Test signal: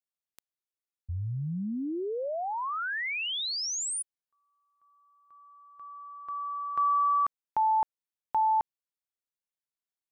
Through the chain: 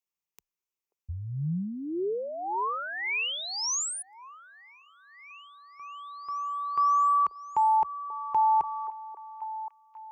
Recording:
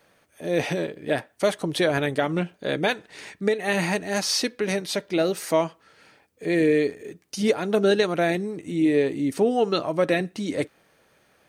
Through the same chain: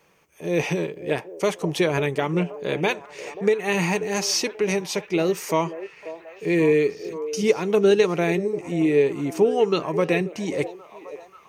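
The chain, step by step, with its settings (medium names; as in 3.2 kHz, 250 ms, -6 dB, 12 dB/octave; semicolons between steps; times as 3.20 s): rippled EQ curve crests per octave 0.76, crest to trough 8 dB; on a send: repeats whose band climbs or falls 535 ms, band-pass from 510 Hz, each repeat 0.7 oct, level -10.5 dB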